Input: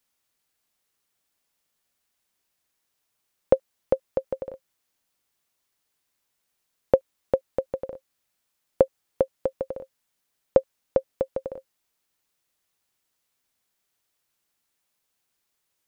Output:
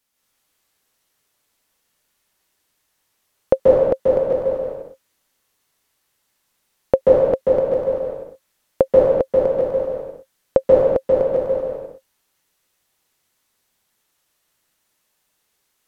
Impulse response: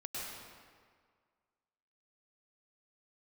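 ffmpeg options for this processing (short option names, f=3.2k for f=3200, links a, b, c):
-filter_complex "[1:a]atrim=start_sample=2205,afade=t=out:st=0.34:d=0.01,atrim=end_sample=15435,asetrate=32193,aresample=44100[a];[0:a][a]afir=irnorm=-1:irlink=0,volume=7dB"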